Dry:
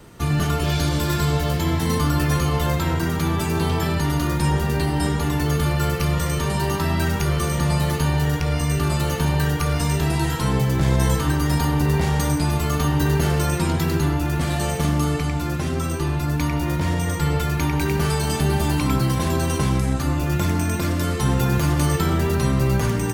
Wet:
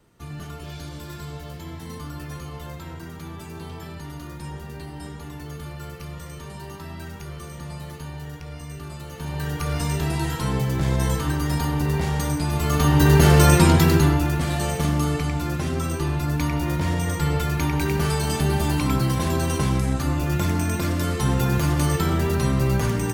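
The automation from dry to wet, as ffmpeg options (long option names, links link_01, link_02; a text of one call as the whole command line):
ffmpeg -i in.wav -af "volume=7.5dB,afade=type=in:start_time=9.11:duration=0.66:silence=0.266073,afade=type=in:start_time=12.49:duration=1.02:silence=0.281838,afade=type=out:start_time=13.51:duration=0.89:silence=0.354813" out.wav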